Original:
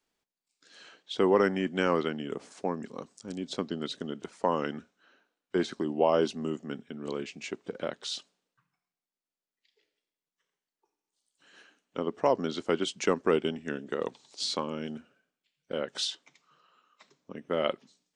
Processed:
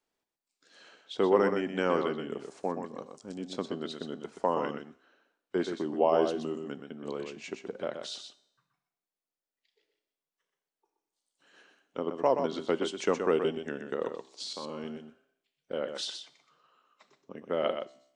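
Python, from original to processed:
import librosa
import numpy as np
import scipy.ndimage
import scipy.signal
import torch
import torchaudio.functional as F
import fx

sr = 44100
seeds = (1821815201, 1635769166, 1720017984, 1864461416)

y = fx.peak_eq(x, sr, hz=630.0, db=5.0, octaves=2.2)
y = fx.level_steps(y, sr, step_db=17, at=(14.42, 14.85))
y = fx.comb_fb(y, sr, f0_hz=66.0, decay_s=0.76, harmonics='all', damping=0.0, mix_pct=40)
y = y + 10.0 ** (-7.0 / 20.0) * np.pad(y, (int(124 * sr / 1000.0), 0))[:len(y)]
y = F.gain(torch.from_numpy(y), -1.5).numpy()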